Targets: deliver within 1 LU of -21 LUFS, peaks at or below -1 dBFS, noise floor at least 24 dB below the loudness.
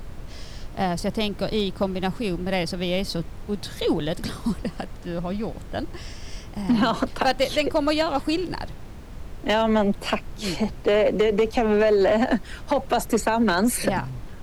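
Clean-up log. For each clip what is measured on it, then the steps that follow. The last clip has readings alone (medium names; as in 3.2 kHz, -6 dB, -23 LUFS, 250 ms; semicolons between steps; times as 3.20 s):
clipped samples 0.7%; clipping level -13.5 dBFS; noise floor -39 dBFS; noise floor target -48 dBFS; loudness -24.0 LUFS; peak level -13.5 dBFS; loudness target -21.0 LUFS
-> clip repair -13.5 dBFS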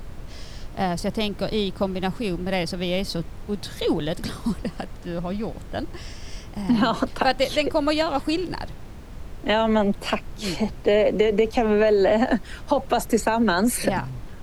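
clipped samples 0.0%; noise floor -39 dBFS; noise floor target -48 dBFS
-> noise print and reduce 9 dB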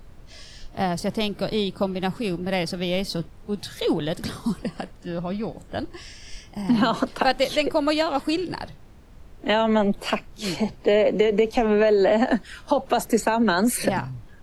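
noise floor -46 dBFS; noise floor target -48 dBFS
-> noise print and reduce 6 dB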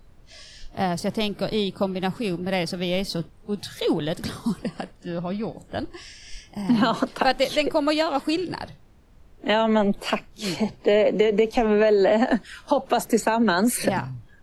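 noise floor -51 dBFS; loudness -24.0 LUFS; peak level -7.5 dBFS; loudness target -21.0 LUFS
-> trim +3 dB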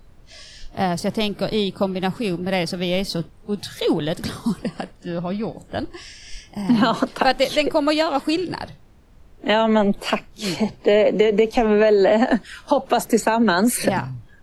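loudness -21.0 LUFS; peak level -4.5 dBFS; noise floor -48 dBFS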